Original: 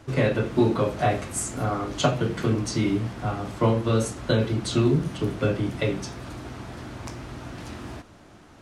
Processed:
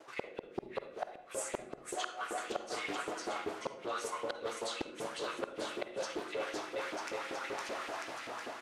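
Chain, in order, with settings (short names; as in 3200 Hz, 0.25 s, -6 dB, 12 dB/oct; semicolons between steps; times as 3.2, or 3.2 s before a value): bouncing-ball echo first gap 0.51 s, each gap 0.85×, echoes 5; LFO high-pass saw up 5.2 Hz 380–2700 Hz; flipped gate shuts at -12 dBFS, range -42 dB; reverse; compressor 5:1, threshold -35 dBFS, peak gain reduction 14.5 dB; reverse; expander -59 dBFS; on a send at -8 dB: reverb RT60 0.75 s, pre-delay 43 ms; on the sum: Doppler distortion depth 0.54 ms; gain -1.5 dB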